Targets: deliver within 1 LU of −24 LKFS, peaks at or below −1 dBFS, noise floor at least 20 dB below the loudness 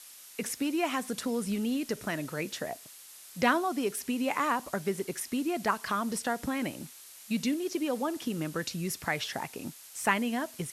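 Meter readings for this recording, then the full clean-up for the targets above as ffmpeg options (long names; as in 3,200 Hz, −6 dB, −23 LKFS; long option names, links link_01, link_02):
background noise floor −51 dBFS; target noise floor −52 dBFS; integrated loudness −32.0 LKFS; sample peak −11.5 dBFS; target loudness −24.0 LKFS
→ -af "afftdn=noise_reduction=6:noise_floor=-51"
-af "volume=8dB"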